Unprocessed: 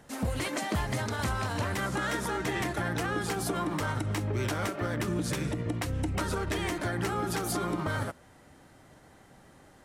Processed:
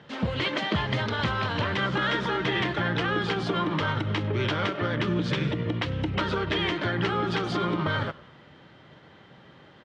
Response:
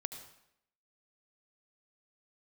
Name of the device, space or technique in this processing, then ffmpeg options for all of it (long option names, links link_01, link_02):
frequency-shifting delay pedal into a guitar cabinet: -filter_complex "[0:a]asplit=5[link_01][link_02][link_03][link_04][link_05];[link_02]adelay=99,afreqshift=-83,volume=-22dB[link_06];[link_03]adelay=198,afreqshift=-166,volume=-27.2dB[link_07];[link_04]adelay=297,afreqshift=-249,volume=-32.4dB[link_08];[link_05]adelay=396,afreqshift=-332,volume=-37.6dB[link_09];[link_01][link_06][link_07][link_08][link_09]amix=inputs=5:normalize=0,highpass=110,equalizer=frequency=150:width_type=q:width=4:gain=3,equalizer=frequency=270:width_type=q:width=4:gain=-5,equalizer=frequency=730:width_type=q:width=4:gain=-6,equalizer=frequency=3200:width_type=q:width=4:gain=7,lowpass=frequency=4200:width=0.5412,lowpass=frequency=4200:width=1.3066,volume=5.5dB"